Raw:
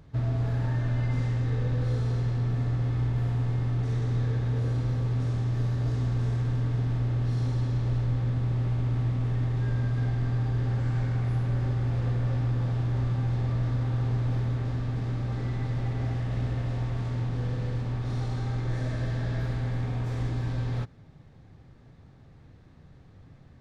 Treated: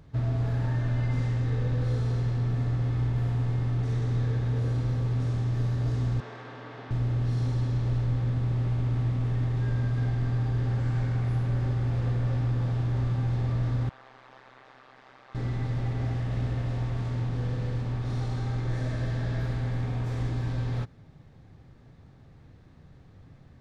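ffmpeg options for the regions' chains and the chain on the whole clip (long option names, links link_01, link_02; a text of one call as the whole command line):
ffmpeg -i in.wav -filter_complex "[0:a]asettb=1/sr,asplit=3[link_01][link_02][link_03];[link_01]atrim=end=6.204[link_04];[link_02]atrim=start=6.2:end=6.91,asetpts=PTS-STARTPTS,afade=type=in:duration=0.004:curve=qsin,afade=type=out:start_time=0.706:duration=0.004:curve=qsin,highpass=420,lowpass=3900,equalizer=frequency=1300:width_type=o:width=1.9:gain=3[link_05];[link_03]atrim=start=6.906[link_06];[link_04][link_05]acrossfade=duration=0.004:curve1=hsin:curve2=qsin[link_07];[link_07][link_06]acrossfade=duration=0.004:curve1=qsin:curve2=hsin,asettb=1/sr,asplit=3[link_08][link_09][link_10];[link_08]atrim=end=13.894[link_11];[link_09]atrim=start=13.89:end=15.35,asetpts=PTS-STARTPTS,afade=type=in:duration=0.004:curve=qsin,afade=type=out:start_time=1.456:duration=0.004:curve=qsin,highpass=920,aemphasis=mode=reproduction:type=75fm,tremolo=f=130:d=0.889[link_12];[link_10]atrim=start=15.346[link_13];[link_11][link_12]acrossfade=duration=0.004:curve1=hsin:curve2=qsin[link_14];[link_14][link_13]acrossfade=duration=0.004:curve1=qsin:curve2=hsin" out.wav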